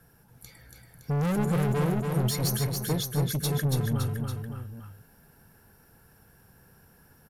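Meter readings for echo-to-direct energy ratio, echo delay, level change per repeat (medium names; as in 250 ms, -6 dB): -3.0 dB, 282 ms, -4.5 dB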